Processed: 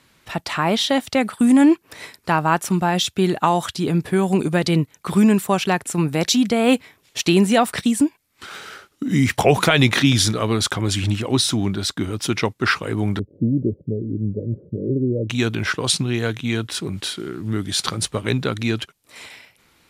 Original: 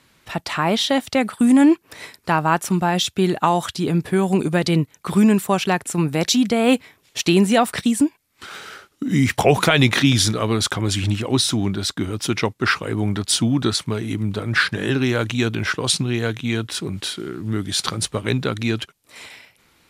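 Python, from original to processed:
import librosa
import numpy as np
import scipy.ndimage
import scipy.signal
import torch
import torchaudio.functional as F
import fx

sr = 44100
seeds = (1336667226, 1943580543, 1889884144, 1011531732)

y = fx.cheby1_lowpass(x, sr, hz=560.0, order=6, at=(13.19, 15.3))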